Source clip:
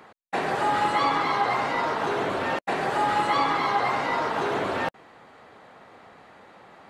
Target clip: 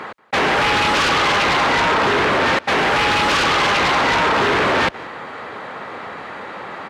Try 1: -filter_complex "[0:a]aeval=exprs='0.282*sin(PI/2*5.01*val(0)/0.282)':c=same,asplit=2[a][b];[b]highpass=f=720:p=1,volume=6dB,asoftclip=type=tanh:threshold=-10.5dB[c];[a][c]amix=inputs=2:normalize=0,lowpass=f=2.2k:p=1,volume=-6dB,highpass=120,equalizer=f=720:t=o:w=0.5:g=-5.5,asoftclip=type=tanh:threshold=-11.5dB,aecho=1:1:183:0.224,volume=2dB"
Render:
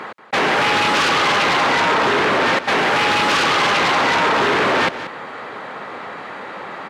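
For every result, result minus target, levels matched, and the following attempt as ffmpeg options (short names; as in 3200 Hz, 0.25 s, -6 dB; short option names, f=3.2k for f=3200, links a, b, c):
echo-to-direct +10 dB; 125 Hz band -3.0 dB
-filter_complex "[0:a]aeval=exprs='0.282*sin(PI/2*5.01*val(0)/0.282)':c=same,asplit=2[a][b];[b]highpass=f=720:p=1,volume=6dB,asoftclip=type=tanh:threshold=-10.5dB[c];[a][c]amix=inputs=2:normalize=0,lowpass=f=2.2k:p=1,volume=-6dB,highpass=120,equalizer=f=720:t=o:w=0.5:g=-5.5,asoftclip=type=tanh:threshold=-11.5dB,aecho=1:1:183:0.0708,volume=2dB"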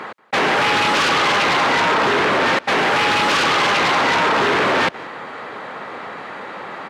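125 Hz band -3.0 dB
-filter_complex "[0:a]aeval=exprs='0.282*sin(PI/2*5.01*val(0)/0.282)':c=same,asplit=2[a][b];[b]highpass=f=720:p=1,volume=6dB,asoftclip=type=tanh:threshold=-10.5dB[c];[a][c]amix=inputs=2:normalize=0,lowpass=f=2.2k:p=1,volume=-6dB,highpass=44,equalizer=f=720:t=o:w=0.5:g=-5.5,asoftclip=type=tanh:threshold=-11.5dB,aecho=1:1:183:0.0708,volume=2dB"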